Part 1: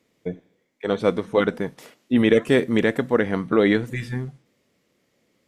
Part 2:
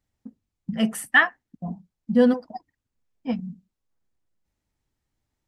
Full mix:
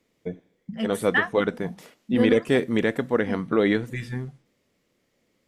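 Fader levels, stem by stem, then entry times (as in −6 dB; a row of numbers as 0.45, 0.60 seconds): −3.0, −6.0 decibels; 0.00, 0.00 seconds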